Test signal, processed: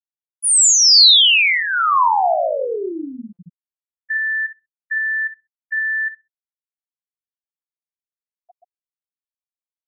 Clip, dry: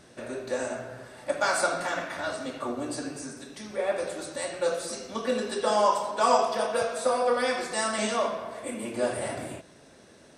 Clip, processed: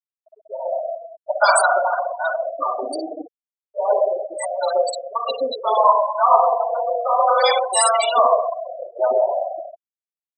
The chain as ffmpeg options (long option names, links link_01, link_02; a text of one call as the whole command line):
ffmpeg -i in.wav -filter_complex "[0:a]highpass=490,equalizer=frequency=670:width_type=q:width=4:gain=6,equalizer=frequency=1000:width_type=q:width=4:gain=4,equalizer=frequency=1700:width_type=q:width=4:gain=-8,equalizer=frequency=4100:width_type=q:width=4:gain=3,equalizer=frequency=6100:width_type=q:width=4:gain=-5,lowpass=frequency=9700:width=0.5412,lowpass=frequency=9700:width=1.3066,asplit=2[link_01][link_02];[link_02]aecho=0:1:54|67:0.335|0.398[link_03];[link_01][link_03]amix=inputs=2:normalize=0,dynaudnorm=framelen=410:gausssize=3:maxgain=12dB,afreqshift=22,afftfilt=real='re*gte(hypot(re,im),0.224)':imag='im*gte(hypot(re,im),0.224)':win_size=1024:overlap=0.75,aemphasis=mode=production:type=75kf,acrossover=split=620[link_04][link_05];[link_04]adelay=130[link_06];[link_06][link_05]amix=inputs=2:normalize=0,volume=1dB" out.wav